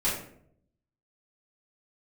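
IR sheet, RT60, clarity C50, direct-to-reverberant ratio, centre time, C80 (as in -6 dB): 0.65 s, 4.0 dB, -9.5 dB, 41 ms, 7.5 dB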